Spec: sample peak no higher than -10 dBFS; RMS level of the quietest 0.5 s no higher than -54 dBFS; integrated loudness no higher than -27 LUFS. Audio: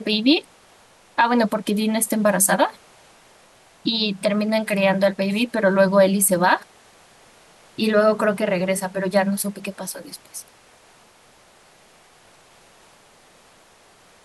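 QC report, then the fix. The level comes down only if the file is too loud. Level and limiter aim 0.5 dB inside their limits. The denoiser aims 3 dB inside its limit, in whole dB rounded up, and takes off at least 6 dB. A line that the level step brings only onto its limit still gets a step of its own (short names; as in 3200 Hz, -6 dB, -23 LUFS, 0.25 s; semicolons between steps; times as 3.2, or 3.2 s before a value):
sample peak -6.0 dBFS: fail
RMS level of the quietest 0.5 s -53 dBFS: fail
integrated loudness -20.0 LUFS: fail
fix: gain -7.5 dB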